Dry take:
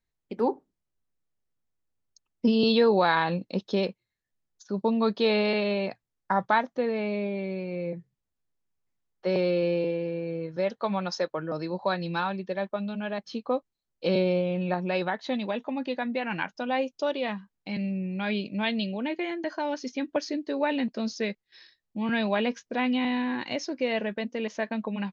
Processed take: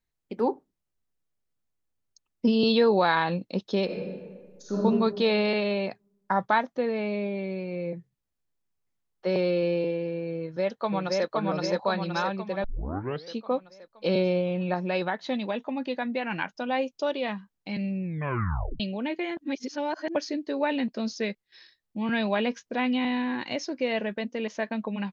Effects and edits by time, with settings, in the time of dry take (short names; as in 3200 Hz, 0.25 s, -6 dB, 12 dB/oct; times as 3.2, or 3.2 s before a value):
3.85–4.77 reverb throw, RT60 1.6 s, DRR -6.5 dB
10.4–11.28 echo throw 0.52 s, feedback 55%, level -1 dB
12.64 tape start 0.70 s
18.04 tape stop 0.76 s
19.37–20.15 reverse